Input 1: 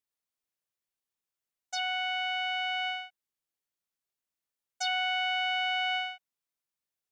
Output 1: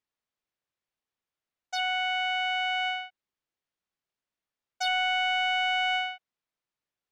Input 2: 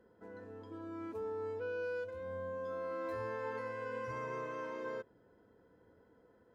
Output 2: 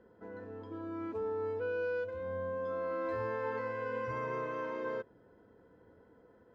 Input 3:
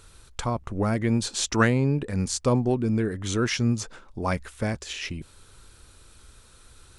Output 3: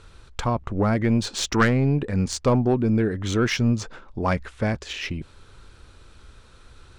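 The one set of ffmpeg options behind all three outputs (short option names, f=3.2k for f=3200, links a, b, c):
-af "adynamicsmooth=sensitivity=1.5:basefreq=4.8k,aeval=exprs='0.473*(cos(1*acos(clip(val(0)/0.473,-1,1)))-cos(1*PI/2))+0.119*(cos(2*acos(clip(val(0)/0.473,-1,1)))-cos(2*PI/2))+0.0596*(cos(5*acos(clip(val(0)/0.473,-1,1)))-cos(5*PI/2))':c=same"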